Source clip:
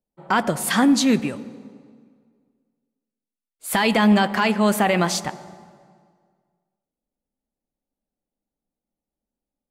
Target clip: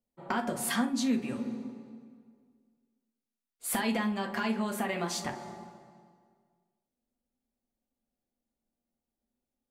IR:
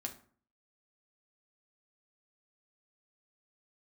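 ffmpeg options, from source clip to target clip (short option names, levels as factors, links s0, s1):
-filter_complex "[0:a]acompressor=threshold=0.0447:ratio=8[s0];[1:a]atrim=start_sample=2205,atrim=end_sample=3528[s1];[s0][s1]afir=irnorm=-1:irlink=0"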